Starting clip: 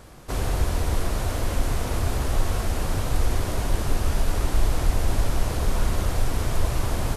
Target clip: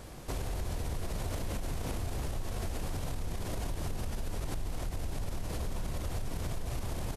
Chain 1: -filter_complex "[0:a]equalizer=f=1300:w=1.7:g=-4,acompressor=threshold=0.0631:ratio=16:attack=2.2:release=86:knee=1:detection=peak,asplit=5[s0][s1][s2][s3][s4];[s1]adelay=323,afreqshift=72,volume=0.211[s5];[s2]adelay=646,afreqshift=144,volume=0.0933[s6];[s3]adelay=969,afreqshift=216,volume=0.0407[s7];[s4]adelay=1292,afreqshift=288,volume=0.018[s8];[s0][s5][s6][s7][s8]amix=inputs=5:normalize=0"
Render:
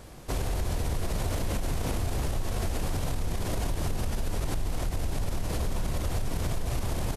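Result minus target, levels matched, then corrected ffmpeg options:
compression: peak gain reduction -6 dB
-filter_complex "[0:a]equalizer=f=1300:w=1.7:g=-4,acompressor=threshold=0.0299:ratio=16:attack=2.2:release=86:knee=1:detection=peak,asplit=5[s0][s1][s2][s3][s4];[s1]adelay=323,afreqshift=72,volume=0.211[s5];[s2]adelay=646,afreqshift=144,volume=0.0933[s6];[s3]adelay=969,afreqshift=216,volume=0.0407[s7];[s4]adelay=1292,afreqshift=288,volume=0.018[s8];[s0][s5][s6][s7][s8]amix=inputs=5:normalize=0"

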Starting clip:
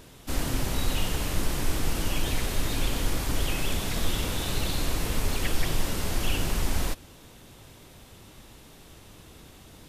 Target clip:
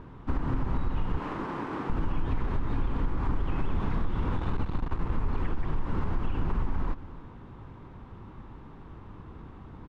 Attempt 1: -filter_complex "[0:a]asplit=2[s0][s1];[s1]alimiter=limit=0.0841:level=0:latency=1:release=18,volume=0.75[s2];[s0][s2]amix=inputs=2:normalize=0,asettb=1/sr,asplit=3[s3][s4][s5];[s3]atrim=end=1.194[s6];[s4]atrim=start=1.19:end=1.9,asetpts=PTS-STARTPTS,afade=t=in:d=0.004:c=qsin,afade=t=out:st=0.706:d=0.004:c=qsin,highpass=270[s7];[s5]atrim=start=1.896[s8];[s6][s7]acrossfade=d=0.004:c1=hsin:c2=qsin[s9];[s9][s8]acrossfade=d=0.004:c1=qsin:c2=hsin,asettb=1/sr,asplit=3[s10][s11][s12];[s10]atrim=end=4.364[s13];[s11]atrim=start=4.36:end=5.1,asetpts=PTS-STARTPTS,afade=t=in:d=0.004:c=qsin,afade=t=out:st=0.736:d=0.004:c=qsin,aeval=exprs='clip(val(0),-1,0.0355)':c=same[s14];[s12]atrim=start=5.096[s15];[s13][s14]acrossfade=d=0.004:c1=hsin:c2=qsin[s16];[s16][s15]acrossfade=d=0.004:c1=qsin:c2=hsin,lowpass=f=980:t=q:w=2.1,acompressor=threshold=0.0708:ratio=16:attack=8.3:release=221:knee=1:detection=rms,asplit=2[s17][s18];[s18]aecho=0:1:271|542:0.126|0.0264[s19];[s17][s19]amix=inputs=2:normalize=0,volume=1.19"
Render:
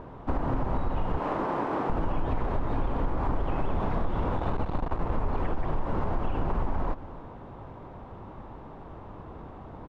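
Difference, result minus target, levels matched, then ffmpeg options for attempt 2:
500 Hz band +5.5 dB
-filter_complex "[0:a]asplit=2[s0][s1];[s1]alimiter=limit=0.0841:level=0:latency=1:release=18,volume=0.75[s2];[s0][s2]amix=inputs=2:normalize=0,asettb=1/sr,asplit=3[s3][s4][s5];[s3]atrim=end=1.194[s6];[s4]atrim=start=1.19:end=1.9,asetpts=PTS-STARTPTS,afade=t=in:d=0.004:c=qsin,afade=t=out:st=0.706:d=0.004:c=qsin,highpass=270[s7];[s5]atrim=start=1.896[s8];[s6][s7]acrossfade=d=0.004:c1=hsin:c2=qsin[s9];[s9][s8]acrossfade=d=0.004:c1=qsin:c2=hsin,asettb=1/sr,asplit=3[s10][s11][s12];[s10]atrim=end=4.364[s13];[s11]atrim=start=4.36:end=5.1,asetpts=PTS-STARTPTS,afade=t=in:d=0.004:c=qsin,afade=t=out:st=0.736:d=0.004:c=qsin,aeval=exprs='clip(val(0),-1,0.0355)':c=same[s14];[s12]atrim=start=5.096[s15];[s13][s14]acrossfade=d=0.004:c1=hsin:c2=qsin[s16];[s16][s15]acrossfade=d=0.004:c1=qsin:c2=hsin,lowpass=f=980:t=q:w=2.1,equalizer=f=640:t=o:w=1.1:g=-13,acompressor=threshold=0.0708:ratio=16:attack=8.3:release=221:knee=1:detection=rms,asplit=2[s17][s18];[s18]aecho=0:1:271|542:0.126|0.0264[s19];[s17][s19]amix=inputs=2:normalize=0,volume=1.19"

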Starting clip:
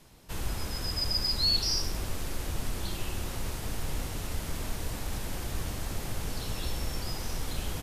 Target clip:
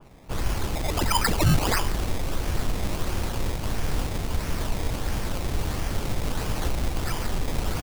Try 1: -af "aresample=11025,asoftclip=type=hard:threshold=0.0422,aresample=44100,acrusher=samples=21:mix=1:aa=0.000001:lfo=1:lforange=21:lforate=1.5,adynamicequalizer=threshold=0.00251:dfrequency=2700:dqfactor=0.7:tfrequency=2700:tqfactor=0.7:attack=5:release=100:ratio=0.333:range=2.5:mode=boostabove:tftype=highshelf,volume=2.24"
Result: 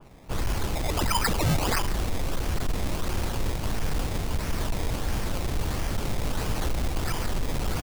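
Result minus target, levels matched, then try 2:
hard clipper: distortion +15 dB
-af "aresample=11025,asoftclip=type=hard:threshold=0.0944,aresample=44100,acrusher=samples=21:mix=1:aa=0.000001:lfo=1:lforange=21:lforate=1.5,adynamicequalizer=threshold=0.00251:dfrequency=2700:dqfactor=0.7:tfrequency=2700:tqfactor=0.7:attack=5:release=100:ratio=0.333:range=2.5:mode=boostabove:tftype=highshelf,volume=2.24"

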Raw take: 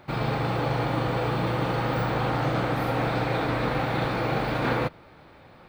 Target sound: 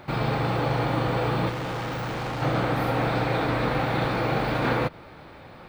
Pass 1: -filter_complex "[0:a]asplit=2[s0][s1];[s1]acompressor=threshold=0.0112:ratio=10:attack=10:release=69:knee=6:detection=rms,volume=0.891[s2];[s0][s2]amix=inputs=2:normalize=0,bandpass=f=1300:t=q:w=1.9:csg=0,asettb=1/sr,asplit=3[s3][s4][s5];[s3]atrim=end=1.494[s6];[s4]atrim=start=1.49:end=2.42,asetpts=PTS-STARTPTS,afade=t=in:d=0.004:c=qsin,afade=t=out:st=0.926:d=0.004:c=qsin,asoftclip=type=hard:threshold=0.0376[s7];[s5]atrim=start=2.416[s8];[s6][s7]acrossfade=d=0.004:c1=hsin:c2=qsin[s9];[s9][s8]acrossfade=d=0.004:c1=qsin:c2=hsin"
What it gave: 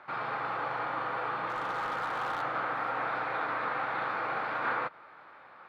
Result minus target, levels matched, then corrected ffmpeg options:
1 kHz band +4.0 dB
-filter_complex "[0:a]asplit=2[s0][s1];[s1]acompressor=threshold=0.0112:ratio=10:attack=10:release=69:knee=6:detection=rms,volume=0.891[s2];[s0][s2]amix=inputs=2:normalize=0,asettb=1/sr,asplit=3[s3][s4][s5];[s3]atrim=end=1.494[s6];[s4]atrim=start=1.49:end=2.42,asetpts=PTS-STARTPTS,afade=t=in:d=0.004:c=qsin,afade=t=out:st=0.926:d=0.004:c=qsin,asoftclip=type=hard:threshold=0.0376[s7];[s5]atrim=start=2.416[s8];[s6][s7]acrossfade=d=0.004:c1=hsin:c2=qsin[s9];[s9][s8]acrossfade=d=0.004:c1=qsin:c2=hsin"

